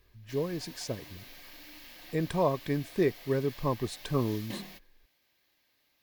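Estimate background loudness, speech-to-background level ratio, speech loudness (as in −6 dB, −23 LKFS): −47.0 LKFS, 15.0 dB, −32.0 LKFS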